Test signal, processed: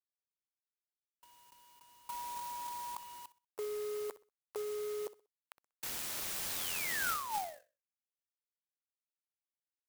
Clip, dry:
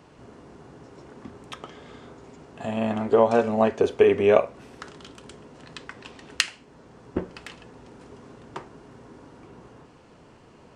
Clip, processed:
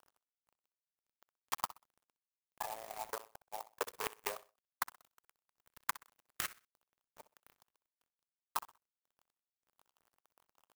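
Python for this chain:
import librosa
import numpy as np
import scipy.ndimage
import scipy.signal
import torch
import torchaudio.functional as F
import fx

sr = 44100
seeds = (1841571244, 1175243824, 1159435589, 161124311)

y = fx.spec_quant(x, sr, step_db=30)
y = fx.high_shelf(y, sr, hz=8200.0, db=-3.5)
y = fx.level_steps(y, sr, step_db=19)
y = fx.ladder_highpass(y, sr, hz=850.0, resonance_pct=55)
y = fx.gate_flip(y, sr, shuts_db=-27.0, range_db=-34)
y = np.sign(y) * np.maximum(np.abs(y) - 10.0 ** (-57.5 / 20.0), 0.0)
y = fx.over_compress(y, sr, threshold_db=-45.0, ratio=-0.5)
y = fx.echo_feedback(y, sr, ms=63, feedback_pct=27, wet_db=-16.5)
y = np.repeat(y[::2], 2)[:len(y)]
y = fx.clock_jitter(y, sr, seeds[0], jitter_ms=0.074)
y = y * 10.0 ** (9.5 / 20.0)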